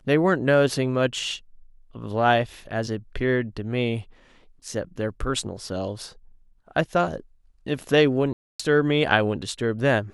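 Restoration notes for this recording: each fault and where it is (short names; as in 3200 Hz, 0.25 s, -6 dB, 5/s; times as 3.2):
8.33–8.6 gap 0.265 s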